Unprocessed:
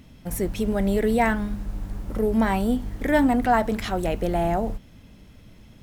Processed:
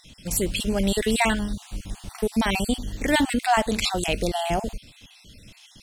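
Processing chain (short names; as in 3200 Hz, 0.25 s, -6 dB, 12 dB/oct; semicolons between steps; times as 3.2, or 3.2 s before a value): random spectral dropouts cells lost 33%; band shelf 5100 Hz +14 dB 2.4 oct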